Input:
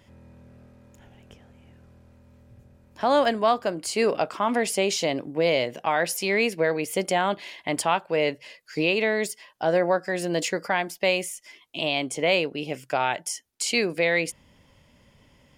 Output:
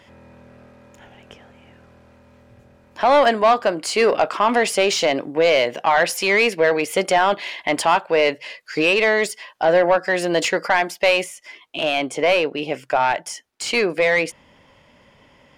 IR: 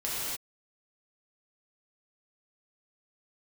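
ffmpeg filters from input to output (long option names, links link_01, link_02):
-filter_complex "[0:a]asetnsamples=nb_out_samples=441:pad=0,asendcmd='11.24 lowpass f 1600',asplit=2[link_01][link_02];[link_02]highpass=frequency=720:poles=1,volume=14dB,asoftclip=type=tanh:threshold=-9dB[link_03];[link_01][link_03]amix=inputs=2:normalize=0,lowpass=frequency=2900:poles=1,volume=-6dB,volume=3.5dB"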